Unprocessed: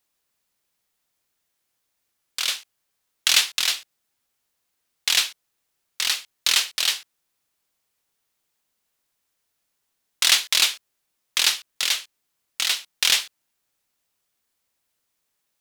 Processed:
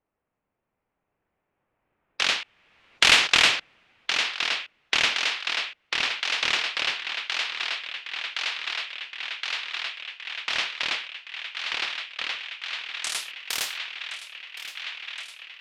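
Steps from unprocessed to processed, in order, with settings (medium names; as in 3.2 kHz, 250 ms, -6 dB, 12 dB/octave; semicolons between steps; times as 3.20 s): Doppler pass-by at 3.22 s, 27 m/s, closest 9.1 m; peaking EQ 15 kHz -6 dB 1.9 oct; in parallel at +1 dB: peak limiter -16.5 dBFS, peak gain reduction 10 dB; on the sum: low-pass sweep 2.6 kHz -> 15 kHz, 12.35–13.39 s; thinning echo 1068 ms, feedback 79%, high-pass 170 Hz, level -16.5 dB; level-controlled noise filter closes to 740 Hz, open at -63.5 dBFS; spectrum-flattening compressor 2:1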